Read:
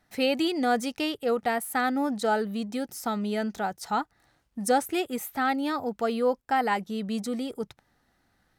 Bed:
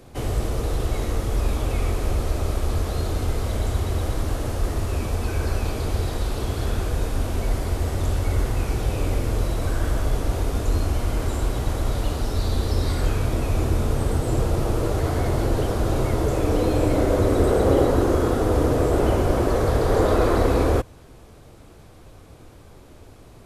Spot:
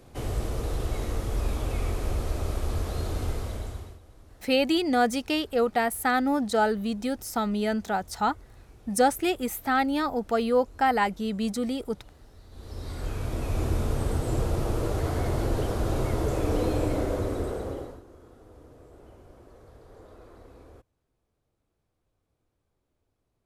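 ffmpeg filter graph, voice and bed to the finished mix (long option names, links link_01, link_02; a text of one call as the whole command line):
ffmpeg -i stem1.wav -i stem2.wav -filter_complex "[0:a]adelay=4300,volume=2dB[link_01];[1:a]volume=17.5dB,afade=type=out:start_time=3.27:duration=0.72:silence=0.0749894,afade=type=in:start_time=12.5:duration=1.17:silence=0.0707946,afade=type=out:start_time=16.64:duration=1.38:silence=0.0473151[link_02];[link_01][link_02]amix=inputs=2:normalize=0" out.wav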